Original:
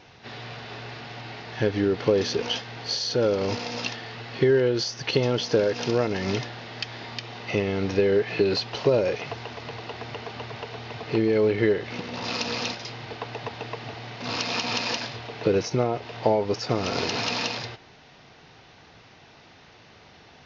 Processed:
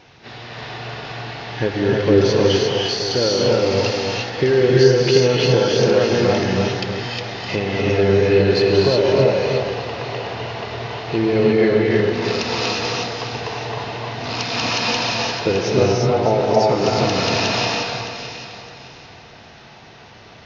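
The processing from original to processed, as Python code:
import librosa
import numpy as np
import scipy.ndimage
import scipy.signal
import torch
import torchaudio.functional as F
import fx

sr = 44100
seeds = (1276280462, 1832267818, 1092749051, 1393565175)

p1 = x + fx.echo_alternate(x, sr, ms=307, hz=1700.0, feedback_pct=54, wet_db=-5.0, dry=0)
p2 = fx.rev_gated(p1, sr, seeds[0], gate_ms=380, shape='rising', drr_db=-3.0)
y = p2 * 10.0 ** (2.5 / 20.0)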